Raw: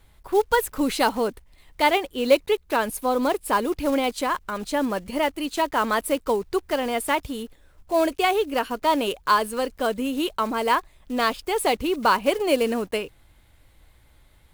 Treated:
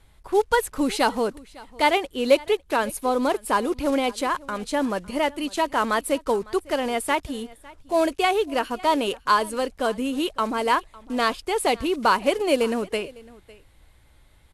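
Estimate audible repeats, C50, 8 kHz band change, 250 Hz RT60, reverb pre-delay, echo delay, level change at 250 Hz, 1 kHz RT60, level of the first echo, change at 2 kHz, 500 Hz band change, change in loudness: 1, none, 0.0 dB, none, none, 0.554 s, 0.0 dB, none, -22.0 dB, 0.0 dB, 0.0 dB, 0.0 dB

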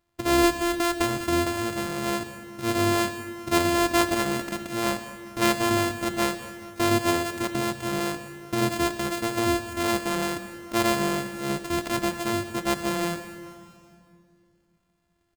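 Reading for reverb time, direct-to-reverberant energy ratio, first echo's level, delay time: 2.4 s, 9.0 dB, -17.0 dB, 0.201 s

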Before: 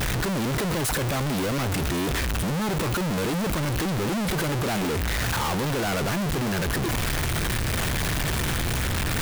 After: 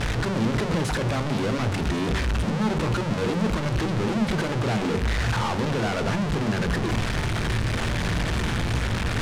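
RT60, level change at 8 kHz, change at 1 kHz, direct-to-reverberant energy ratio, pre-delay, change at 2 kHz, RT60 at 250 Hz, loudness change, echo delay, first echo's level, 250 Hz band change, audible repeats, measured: 0.45 s, -7.5 dB, 0.0 dB, 10.5 dB, 18 ms, -0.5 dB, 0.75 s, +0.5 dB, none, none, +1.5 dB, none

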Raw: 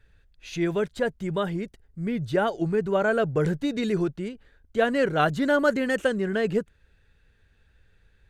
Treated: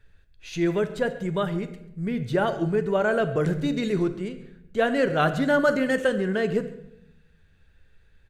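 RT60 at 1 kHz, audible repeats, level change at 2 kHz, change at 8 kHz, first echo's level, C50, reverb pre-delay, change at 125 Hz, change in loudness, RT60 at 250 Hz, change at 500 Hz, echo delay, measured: 0.75 s, 1, +0.5 dB, n/a, -19.0 dB, 12.0 dB, 5 ms, +1.5 dB, +1.0 dB, 1.2 s, +0.5 dB, 0.137 s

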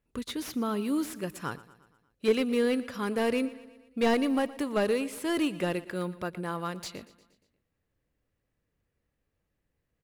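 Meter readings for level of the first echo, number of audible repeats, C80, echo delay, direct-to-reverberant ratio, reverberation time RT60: -18.5 dB, 4, none, 0.118 s, none, none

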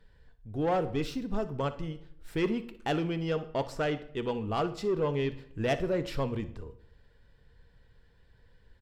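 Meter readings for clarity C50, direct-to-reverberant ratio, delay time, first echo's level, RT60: 14.0 dB, 10.5 dB, 61 ms, -17.5 dB, 0.70 s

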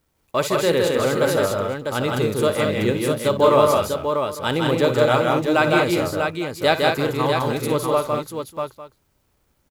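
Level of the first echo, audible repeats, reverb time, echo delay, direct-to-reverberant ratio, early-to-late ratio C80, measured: -12.5 dB, 5, none, 57 ms, none, none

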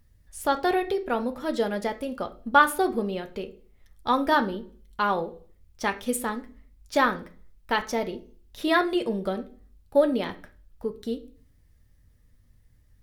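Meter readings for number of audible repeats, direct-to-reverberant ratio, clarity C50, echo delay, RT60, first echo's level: none, 5.0 dB, 15.0 dB, none, 0.45 s, none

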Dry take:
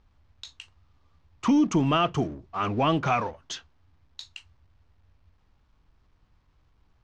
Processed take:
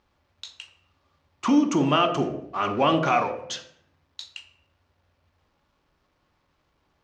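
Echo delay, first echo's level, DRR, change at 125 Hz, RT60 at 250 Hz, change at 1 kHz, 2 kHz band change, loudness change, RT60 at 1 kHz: none, none, 4.5 dB, -2.5 dB, 0.90 s, +3.0 dB, +3.0 dB, +2.0 dB, 0.60 s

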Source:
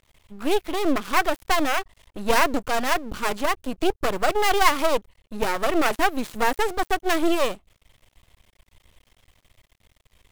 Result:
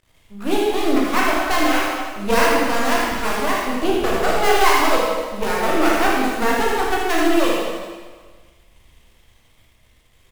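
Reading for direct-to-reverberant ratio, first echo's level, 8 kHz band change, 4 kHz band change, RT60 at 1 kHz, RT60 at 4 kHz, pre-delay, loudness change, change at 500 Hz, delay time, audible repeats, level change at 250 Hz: -5.0 dB, -5.0 dB, +4.5 dB, +4.0 dB, 1.5 s, 1.4 s, 7 ms, +4.5 dB, +5.0 dB, 79 ms, 1, +6.0 dB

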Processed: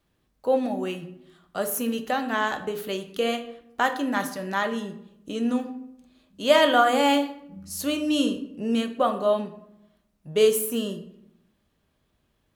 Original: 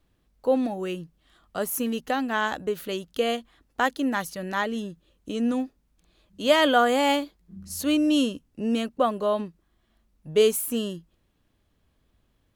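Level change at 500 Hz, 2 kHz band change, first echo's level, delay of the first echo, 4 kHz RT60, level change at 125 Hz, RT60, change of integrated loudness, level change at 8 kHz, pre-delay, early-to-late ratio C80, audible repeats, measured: +1.0 dB, +0.5 dB, none, none, 0.50 s, 0.0 dB, 0.80 s, +0.5 dB, +0.5 dB, 5 ms, 14.5 dB, none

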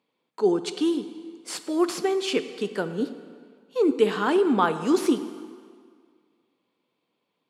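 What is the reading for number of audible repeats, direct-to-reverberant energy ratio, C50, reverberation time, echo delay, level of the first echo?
none, 10.5 dB, 11.5 dB, 1.9 s, none, none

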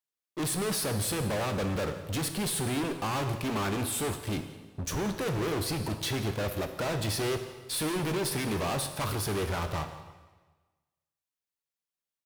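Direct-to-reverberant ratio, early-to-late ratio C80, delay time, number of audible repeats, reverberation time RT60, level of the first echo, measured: 7.0 dB, 10.5 dB, 0.169 s, 1, 1.3 s, -19.0 dB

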